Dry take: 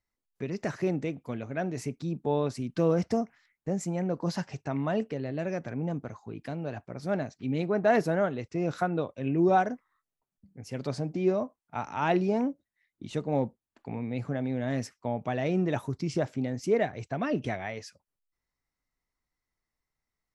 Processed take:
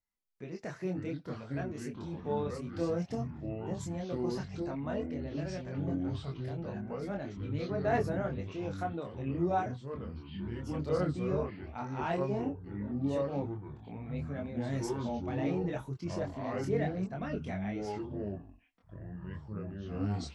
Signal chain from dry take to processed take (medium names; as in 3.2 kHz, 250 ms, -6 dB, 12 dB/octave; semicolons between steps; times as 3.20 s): 14.57–14.99 s: tone controls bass +8 dB, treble +9 dB; ever faster or slower copies 408 ms, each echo -5 st, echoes 3; chorus voices 4, 0.11 Hz, delay 25 ms, depth 4.6 ms; trim -5 dB